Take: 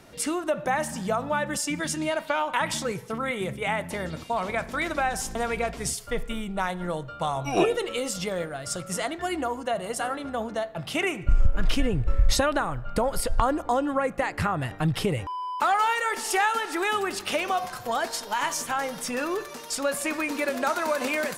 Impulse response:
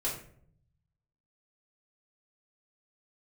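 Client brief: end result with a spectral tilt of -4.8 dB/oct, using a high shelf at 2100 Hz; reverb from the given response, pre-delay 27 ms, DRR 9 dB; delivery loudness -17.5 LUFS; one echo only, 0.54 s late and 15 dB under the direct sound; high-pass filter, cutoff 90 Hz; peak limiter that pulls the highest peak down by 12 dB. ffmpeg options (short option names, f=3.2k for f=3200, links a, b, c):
-filter_complex "[0:a]highpass=90,highshelf=f=2.1k:g=-7,alimiter=limit=-20.5dB:level=0:latency=1,aecho=1:1:540:0.178,asplit=2[a][b];[1:a]atrim=start_sample=2205,adelay=27[c];[b][c]afir=irnorm=-1:irlink=0,volume=-13.5dB[d];[a][d]amix=inputs=2:normalize=0,volume=13dB"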